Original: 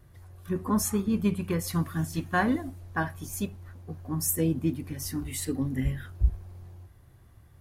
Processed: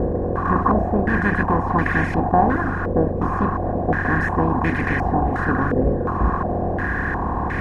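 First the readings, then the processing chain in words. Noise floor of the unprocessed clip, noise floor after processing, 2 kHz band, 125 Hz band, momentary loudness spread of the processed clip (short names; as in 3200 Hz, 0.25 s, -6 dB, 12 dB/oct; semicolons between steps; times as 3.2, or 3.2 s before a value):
-55 dBFS, -24 dBFS, +14.5 dB, +9.0 dB, 4 LU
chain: per-bin compression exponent 0.2; reverb removal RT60 0.8 s; stepped low-pass 2.8 Hz 530–2100 Hz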